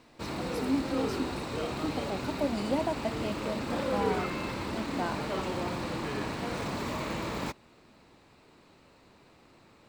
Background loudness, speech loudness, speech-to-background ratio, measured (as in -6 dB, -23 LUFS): -34.0 LUFS, -35.5 LUFS, -1.5 dB